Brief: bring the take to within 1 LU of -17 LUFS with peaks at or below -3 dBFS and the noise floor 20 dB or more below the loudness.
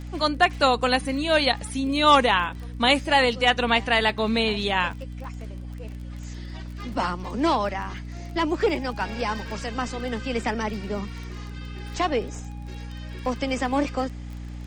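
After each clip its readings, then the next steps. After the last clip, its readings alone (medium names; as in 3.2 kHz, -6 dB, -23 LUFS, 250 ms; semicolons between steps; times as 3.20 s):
tick rate 23 per s; hum 60 Hz; highest harmonic 300 Hz; hum level -33 dBFS; loudness -23.5 LUFS; peak level -6.0 dBFS; loudness target -17.0 LUFS
-> de-click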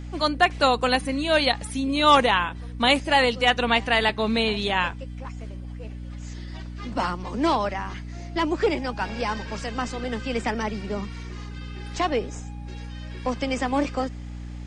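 tick rate 0 per s; hum 60 Hz; highest harmonic 300 Hz; hum level -33 dBFS
-> de-hum 60 Hz, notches 5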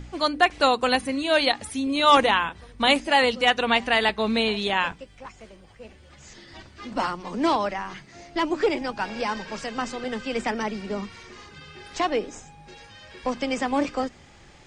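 hum not found; loudness -24.0 LUFS; peak level -5.5 dBFS; loudness target -17.0 LUFS
-> trim +7 dB; peak limiter -3 dBFS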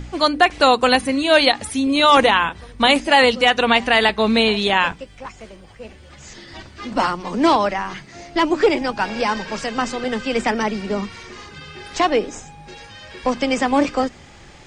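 loudness -17.5 LUFS; peak level -3.0 dBFS; noise floor -44 dBFS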